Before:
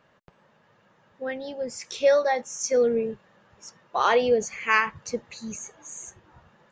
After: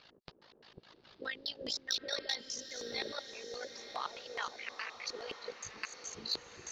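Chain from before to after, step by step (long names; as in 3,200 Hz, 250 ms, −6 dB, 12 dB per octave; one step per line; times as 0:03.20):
delay that plays each chunk backwards 532 ms, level −3 dB
parametric band 4,300 Hz +14.5 dB 1.3 octaves
harmonic and percussive parts rebalanced harmonic −17 dB
0:03.12–0:05.58: three-way crossover with the lows and the highs turned down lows −22 dB, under 530 Hz, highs −14 dB, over 2,300 Hz
downward compressor 3 to 1, threshold −43 dBFS, peak gain reduction 18.5 dB
auto-filter low-pass square 4.8 Hz 380–4,600 Hz
soft clipping −21.5 dBFS, distortion −29 dB
amplitude modulation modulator 54 Hz, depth 50%
feedback delay with all-pass diffusion 924 ms, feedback 57%, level −11 dB
level +4.5 dB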